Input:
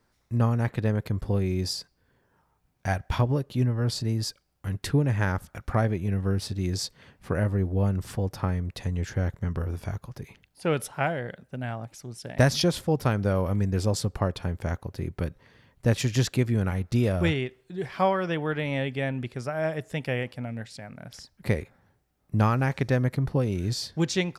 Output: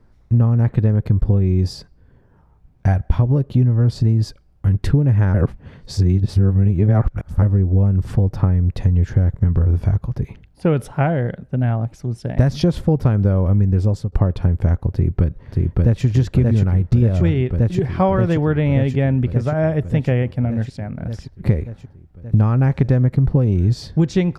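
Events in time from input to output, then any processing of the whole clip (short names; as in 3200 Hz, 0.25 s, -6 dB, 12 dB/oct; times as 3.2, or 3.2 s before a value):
5.34–7.42 reverse
13.56–14.12 fade out equal-power, to -20.5 dB
14.9–16.05 echo throw 0.58 s, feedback 75%, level -2 dB
whole clip: tilt -3.5 dB/oct; compressor, threshold -18 dBFS; gain +6.5 dB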